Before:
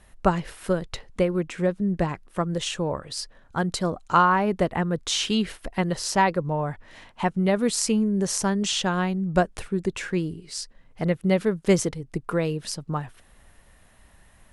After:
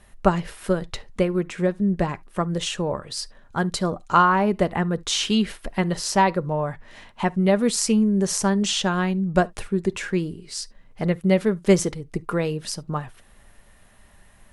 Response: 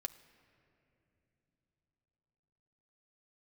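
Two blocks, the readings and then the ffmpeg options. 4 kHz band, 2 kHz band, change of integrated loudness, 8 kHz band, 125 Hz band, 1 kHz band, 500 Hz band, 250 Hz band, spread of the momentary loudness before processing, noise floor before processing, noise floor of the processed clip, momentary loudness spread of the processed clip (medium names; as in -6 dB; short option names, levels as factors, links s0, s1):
+1.5 dB, +1.5 dB, +2.0 dB, +1.5 dB, +2.0 dB, +1.5 dB, +2.0 dB, +2.5 dB, 10 LU, -56 dBFS, -53 dBFS, 11 LU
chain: -filter_complex "[0:a]asplit=2[s0][s1];[1:a]atrim=start_sample=2205,atrim=end_sample=3528[s2];[s1][s2]afir=irnorm=-1:irlink=0,volume=2.99[s3];[s0][s3]amix=inputs=2:normalize=0,volume=0.376"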